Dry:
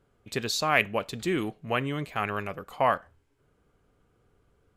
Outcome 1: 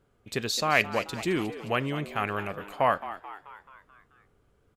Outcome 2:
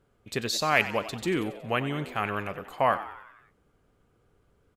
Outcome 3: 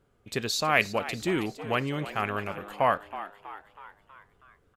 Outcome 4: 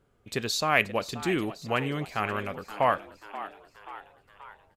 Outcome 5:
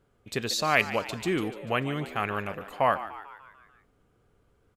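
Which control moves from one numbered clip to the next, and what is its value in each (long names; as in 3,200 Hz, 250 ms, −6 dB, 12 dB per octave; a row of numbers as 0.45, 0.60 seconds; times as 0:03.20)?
echo with shifted repeats, delay time: 217, 92, 322, 531, 147 milliseconds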